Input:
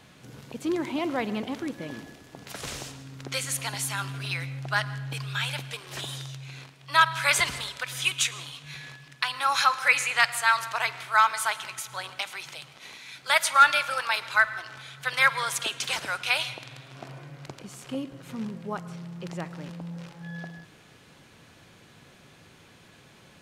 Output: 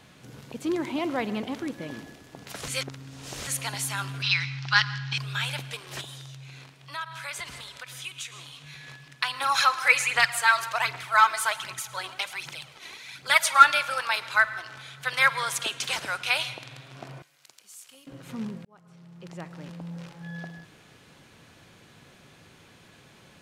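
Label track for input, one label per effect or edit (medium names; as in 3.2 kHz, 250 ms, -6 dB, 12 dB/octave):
2.680000	3.470000	reverse
4.220000	5.180000	FFT filter 160 Hz 0 dB, 300 Hz -9 dB, 610 Hz -17 dB, 880 Hz +2 dB, 5.4 kHz +12 dB, 13 kHz -28 dB
6.010000	8.880000	compression 2:1, threshold -43 dBFS
9.410000	13.650000	phaser 1.3 Hz, delay 3.1 ms
17.220000	18.070000	differentiator
18.650000	19.940000	fade in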